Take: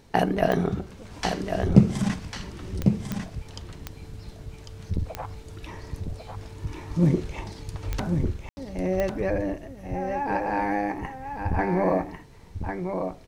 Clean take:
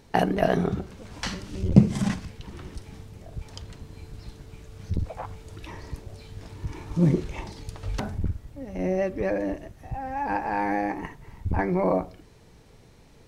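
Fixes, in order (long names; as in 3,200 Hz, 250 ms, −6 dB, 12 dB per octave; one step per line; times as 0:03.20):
click removal
ambience match 0:08.49–0:08.57
echo removal 1,098 ms −6 dB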